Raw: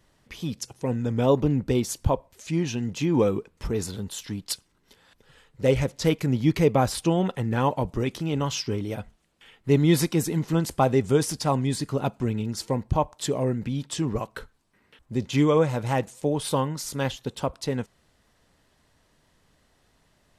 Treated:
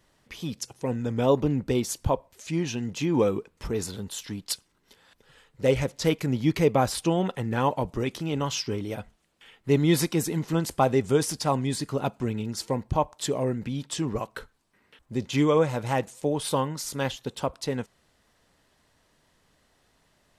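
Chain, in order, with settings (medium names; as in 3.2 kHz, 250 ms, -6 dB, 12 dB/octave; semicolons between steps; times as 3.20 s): bass shelf 220 Hz -4.5 dB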